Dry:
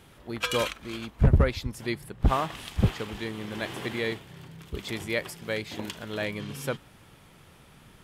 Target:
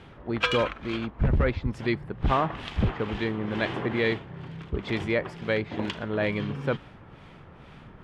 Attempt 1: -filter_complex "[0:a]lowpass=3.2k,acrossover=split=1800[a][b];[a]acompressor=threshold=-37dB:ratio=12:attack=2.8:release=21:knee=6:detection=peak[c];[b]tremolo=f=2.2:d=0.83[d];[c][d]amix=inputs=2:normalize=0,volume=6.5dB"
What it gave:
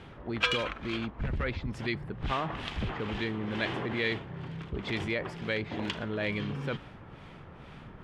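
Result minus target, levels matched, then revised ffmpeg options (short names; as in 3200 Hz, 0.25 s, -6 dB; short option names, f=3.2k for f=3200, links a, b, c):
compressor: peak gain reduction +10 dB
-filter_complex "[0:a]lowpass=3.2k,acrossover=split=1800[a][b];[a]acompressor=threshold=-26dB:ratio=12:attack=2.8:release=21:knee=6:detection=peak[c];[b]tremolo=f=2.2:d=0.83[d];[c][d]amix=inputs=2:normalize=0,volume=6.5dB"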